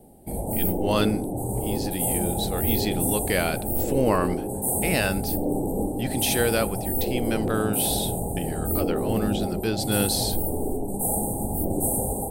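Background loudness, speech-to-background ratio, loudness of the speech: −26.5 LKFS, −1.5 dB, −28.0 LKFS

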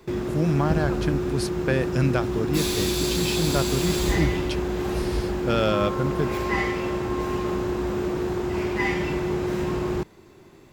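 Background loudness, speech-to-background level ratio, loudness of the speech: −26.0 LKFS, −1.0 dB, −27.0 LKFS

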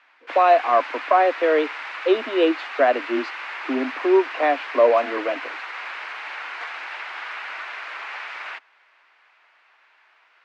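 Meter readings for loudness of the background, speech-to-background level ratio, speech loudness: −32.0 LKFS, 11.0 dB, −21.0 LKFS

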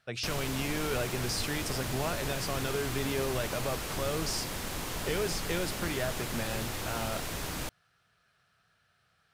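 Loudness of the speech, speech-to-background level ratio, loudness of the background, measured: −35.0 LKFS, 1.0 dB, −36.0 LKFS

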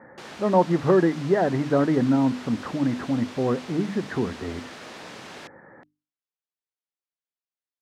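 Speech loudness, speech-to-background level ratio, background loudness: −23.5 LKFS, 17.5 dB, −41.0 LKFS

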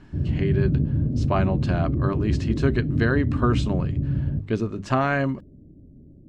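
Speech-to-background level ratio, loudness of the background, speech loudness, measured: −1.0 dB, −25.0 LKFS, −26.0 LKFS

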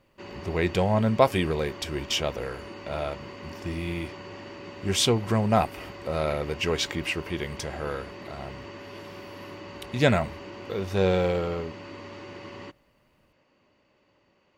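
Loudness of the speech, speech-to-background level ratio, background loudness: −27.0 LKFS, 14.5 dB, −41.5 LKFS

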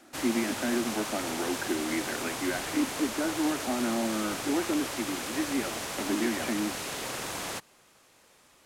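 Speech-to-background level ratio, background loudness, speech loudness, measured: 2.0 dB, −34.0 LKFS, −32.0 LKFS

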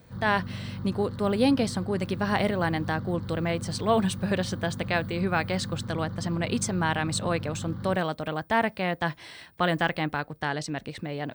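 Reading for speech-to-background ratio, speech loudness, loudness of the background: 9.0 dB, −28.0 LKFS, −37.0 LKFS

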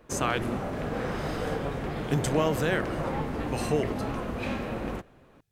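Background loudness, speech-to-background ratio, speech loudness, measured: −32.5 LKFS, 2.5 dB, −30.0 LKFS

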